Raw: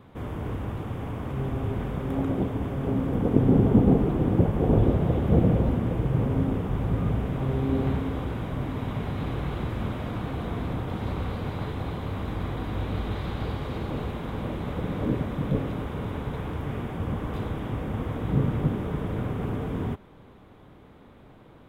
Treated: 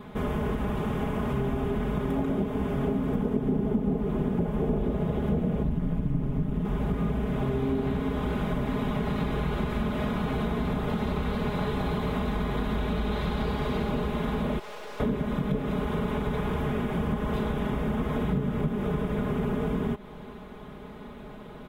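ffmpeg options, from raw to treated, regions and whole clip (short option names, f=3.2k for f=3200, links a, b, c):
-filter_complex "[0:a]asettb=1/sr,asplit=3[a][b][c];[a]atrim=end=5.634[d];[b]atrim=start=5.63:end=6.65,asetpts=PTS-STARTPTS,afade=t=in:d=0.004:c=qsin,afade=t=out:st=1.016:d=0.004:c=qsin,lowshelf=f=200:t=q:w=3:g=6.5,tremolo=f=150:d=0.857[e];[c]atrim=start=6.646[f];[d][e]acrossfade=d=0.004:c1=hsin:c2=qsin[g];[g][f]acrossfade=d=0.004:c1=qsin:c2=hsin,asettb=1/sr,asplit=3[h][i][j];[h]atrim=end=14.594[k];[i]atrim=start=14.59:end=15,asetpts=PTS-STARTPTS,afade=t=in:d=0.004:c=qsin,afade=t=out:st=0.406:d=0.004:c=qsin,highpass=f=440:w=0.5412,highpass=f=440:w=1.3066,aeval=exprs='(tanh(251*val(0)+0.65)-tanh(0.65))/251':c=same[l];[j]atrim=start=14.996[m];[k][l]acrossfade=d=0.004:c1=hsin:c2=qsin[n];[n][m]acrossfade=d=0.004:c1=qsin:c2=hsin,aecho=1:1:4.8:0.79,acompressor=threshold=-31dB:ratio=6,volume=6.5dB"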